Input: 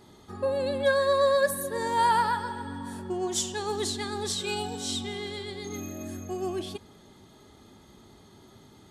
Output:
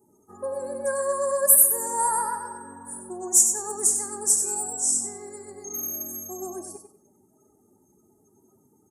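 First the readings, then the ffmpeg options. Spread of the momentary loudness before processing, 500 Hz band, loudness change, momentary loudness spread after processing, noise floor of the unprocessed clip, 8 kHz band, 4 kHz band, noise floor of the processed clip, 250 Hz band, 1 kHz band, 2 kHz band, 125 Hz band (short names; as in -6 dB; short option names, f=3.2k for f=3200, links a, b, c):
14 LU, -3.0 dB, +7.0 dB, 22 LU, -55 dBFS, +16.0 dB, -10.5 dB, -64 dBFS, -6.0 dB, -2.5 dB, -8.5 dB, under -10 dB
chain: -af "afftdn=nr=22:nf=-50,highpass=f=450:p=1,highshelf=f=4.6k:g=-4.5,aexciter=amount=15.9:drive=4.6:freq=5.5k,asuperstop=centerf=3300:order=4:qfactor=0.52,aecho=1:1:95|190|285:0.398|0.0916|0.0211,volume=-1dB"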